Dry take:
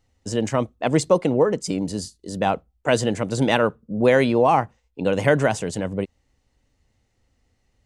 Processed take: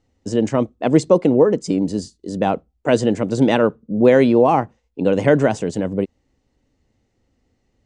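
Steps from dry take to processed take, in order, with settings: low-pass 8.4 kHz 24 dB/octave; peaking EQ 300 Hz +9 dB 2.1 oct; trim -2 dB

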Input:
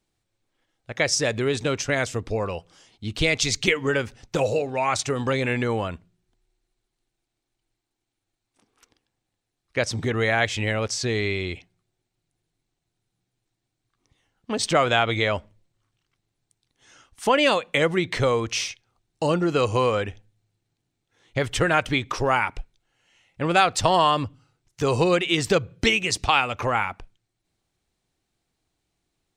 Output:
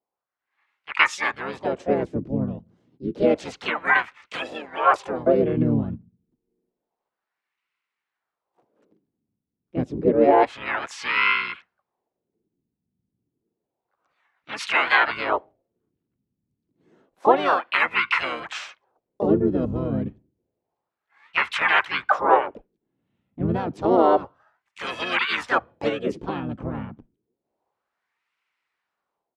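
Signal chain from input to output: wah-wah 0.29 Hz 200–2100 Hz, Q 5.2; harmony voices -12 st -7 dB, -7 st -4 dB, +4 st -3 dB; level rider gain up to 10 dB

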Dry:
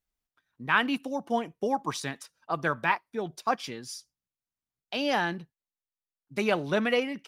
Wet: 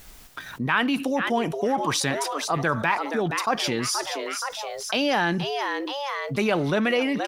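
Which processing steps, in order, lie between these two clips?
frequency-shifting echo 475 ms, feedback 39%, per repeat +140 Hz, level -17 dB; level flattener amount 70%

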